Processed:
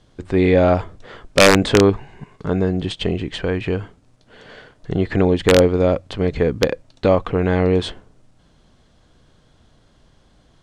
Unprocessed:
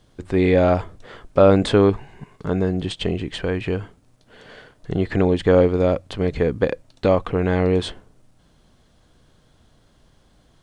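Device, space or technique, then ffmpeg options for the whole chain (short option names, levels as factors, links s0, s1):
overflowing digital effects unit: -af "aeval=exprs='(mod(1.68*val(0)+1,2)-1)/1.68':c=same,lowpass=8300,volume=1.26"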